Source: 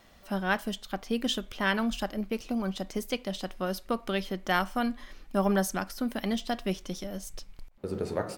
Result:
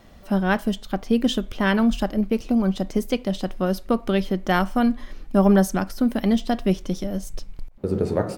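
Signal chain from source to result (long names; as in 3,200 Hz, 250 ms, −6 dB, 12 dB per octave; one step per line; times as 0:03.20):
tilt shelving filter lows +5 dB, about 640 Hz
level +7 dB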